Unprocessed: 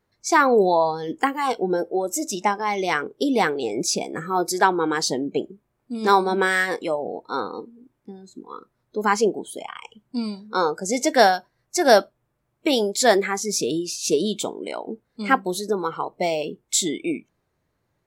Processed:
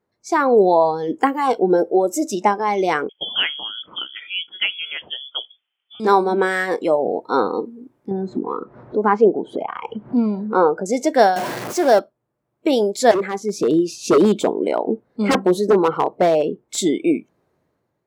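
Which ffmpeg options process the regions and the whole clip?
-filter_complex "[0:a]asettb=1/sr,asplit=3[s0][s1][s2];[s0]atrim=end=3.094[s3];[s1]atrim=start=3.09:end=6,asetpts=PTS-STARTPTS,afade=t=in:d=0.004:c=qsin,afade=t=out:st=2.906:d=0.004:c=qsin,highpass=470,equalizer=f=610:w=3.3:g=7.5,lowpass=f=3100:t=q:w=0.5098,lowpass=f=3100:t=q:w=0.6013,lowpass=f=3100:t=q:w=0.9,lowpass=f=3100:t=q:w=2.563,afreqshift=-3700[s4];[s2]atrim=start=5.996[s5];[s3][s4]acrossfade=d=0.004:c1=hsin:c2=qsin[s6];[s6][s5]acrossfade=d=0.004:c1=qsin:c2=hsin,asettb=1/sr,asplit=3[s7][s8][s9];[s7]atrim=end=8.114[s10];[s8]atrim=start=8.11:end=10.86,asetpts=PTS-STARTPTS,afade=t=in:d=0.004:c=qsin,afade=t=out:st=2.746:d=0.004:c=qsin,lowpass=1700,acompressor=mode=upward:threshold=0.0708:ratio=2.5:attack=3.2:release=140:knee=2.83:detection=peak[s11];[s9]atrim=start=10.856[s12];[s10][s11]acrossfade=d=0.004:c1=hsin:c2=qsin[s13];[s13][s12]acrossfade=d=0.004:c1=qsin:c2=hsin,asettb=1/sr,asplit=3[s14][s15][s16];[s14]atrim=end=11.364[s17];[s15]atrim=start=11.36:end=11.99,asetpts=PTS-STARTPTS,afade=t=in:d=0.004:c=qsin,afade=t=out:st=0.626:d=0.004:c=qsin,aeval=exprs='val(0)+0.5*0.141*sgn(val(0))':c=same,highpass=170[s18];[s16]atrim=start=11.986[s19];[s17][s18]acrossfade=d=0.004:c1=hsin:c2=qsin[s20];[s20][s19]acrossfade=d=0.004:c1=qsin:c2=hsin,asettb=1/sr,asplit=3[s21][s22][s23];[s21]atrim=end=13.114[s24];[s22]atrim=start=13.11:end=16.78,asetpts=PTS-STARTPTS,afade=t=in:d=0.004:c=qsin,afade=t=out:st=3.666:d=0.004:c=qsin,highshelf=f=3000:g=-8.5,aeval=exprs='0.119*(abs(mod(val(0)/0.119+3,4)-2)-1)':c=same[s25];[s23]atrim=start=16.776[s26];[s24][s25]acrossfade=d=0.004:c1=hsin:c2=qsin[s27];[s27][s26]acrossfade=d=0.004:c1=qsin:c2=hsin,dynaudnorm=f=120:g=9:m=3.76,highpass=f=460:p=1,tiltshelf=f=930:g=8,volume=0.891"

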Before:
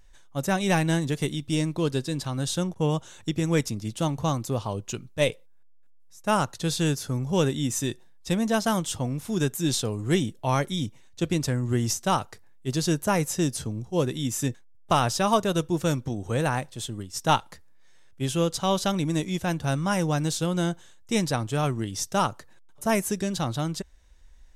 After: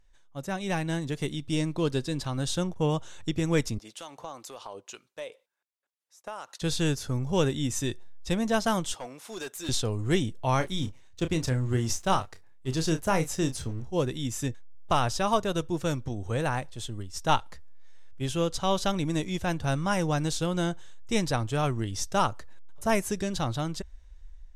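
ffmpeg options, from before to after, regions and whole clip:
-filter_complex "[0:a]asettb=1/sr,asplit=3[s0][s1][s2];[s0]atrim=end=3.784[s3];[s1]atrim=start=3.78:end=6.62,asetpts=PTS-STARTPTS,afade=t=in:d=0.004:c=qsin,afade=t=out:st=2.836:d=0.004:c=qsin,highpass=500,acompressor=threshold=0.0224:ratio=4:attack=3.2:release=140:knee=1:detection=peak,acrossover=split=1200[s4][s5];[s4]aeval=exprs='val(0)*(1-0.5/2+0.5/2*cos(2*PI*2*n/s))':c=same[s6];[s5]aeval=exprs='val(0)*(1-0.5/2-0.5/2*cos(2*PI*2*n/s))':c=same[s7];[s6][s7]amix=inputs=2:normalize=0[s8];[s2]atrim=start=6.616[s9];[s3][s8]acrossfade=d=0.004:c1=hsin:c2=qsin[s10];[s10][s9]acrossfade=d=0.004:c1=qsin:c2=hsin,asettb=1/sr,asplit=3[s11][s12][s13];[s11]atrim=end=8.944[s14];[s12]atrim=start=8.94:end=9.69,asetpts=PTS-STARTPTS,afade=t=in:d=0.004:c=qsin,afade=t=out:st=0.746:d=0.004:c=qsin,highpass=510,asoftclip=type=hard:threshold=0.0299[s15];[s13]atrim=start=9.686[s16];[s14][s15]acrossfade=d=0.004:c1=hsin:c2=qsin[s17];[s17][s16]acrossfade=d=0.004:c1=qsin:c2=hsin,asettb=1/sr,asplit=3[s18][s19][s20];[s18]atrim=end=10.574[s21];[s19]atrim=start=10.57:end=13.87,asetpts=PTS-STARTPTS,afade=t=in:d=0.004:c=qsin,afade=t=out:st=3.296:d=0.004:c=qsin,asplit=2[s22][s23];[s23]adelay=31,volume=0.335[s24];[s22][s24]amix=inputs=2:normalize=0,atrim=end_sample=145530,aeval=exprs='sgn(val(0))*max(abs(val(0))-0.00335,0)':c=same[s25];[s20]atrim=start=13.866[s26];[s21][s25]acrossfade=d=0.004:c1=hsin:c2=qsin[s27];[s27][s26]acrossfade=d=0.004:c1=qsin:c2=hsin,highshelf=f=10000:g=-9.5,dynaudnorm=f=460:g=5:m=2.51,asubboost=boost=4:cutoff=73,volume=0.398"

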